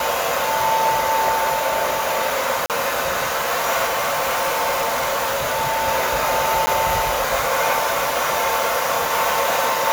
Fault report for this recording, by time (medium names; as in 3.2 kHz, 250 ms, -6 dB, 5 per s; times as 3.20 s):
2.66–2.70 s: dropout 38 ms
3.87–5.89 s: clipped -17 dBFS
6.66–6.67 s: dropout 10 ms